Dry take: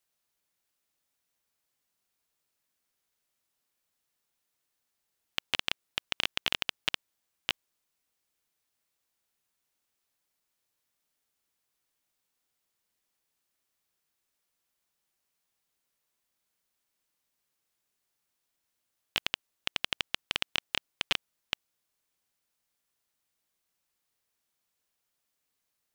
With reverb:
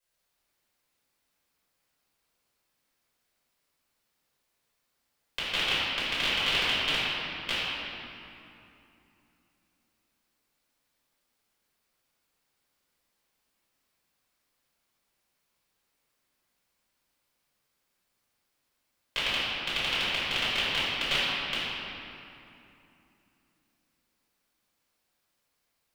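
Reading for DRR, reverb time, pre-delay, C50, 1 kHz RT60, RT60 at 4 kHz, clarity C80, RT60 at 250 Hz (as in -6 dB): -12.0 dB, 2.8 s, 4 ms, -4.0 dB, 2.9 s, 1.8 s, -2.5 dB, 3.9 s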